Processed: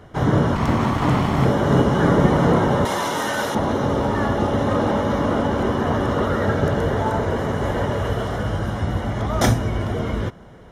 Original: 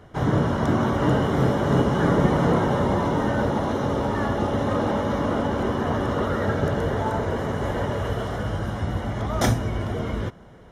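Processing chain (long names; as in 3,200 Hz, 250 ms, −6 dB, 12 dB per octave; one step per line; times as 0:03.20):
0:00.55–0:01.46: lower of the sound and its delayed copy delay 0.94 ms
0:02.85–0:03.55: spectral tilt +4.5 dB per octave
level +3.5 dB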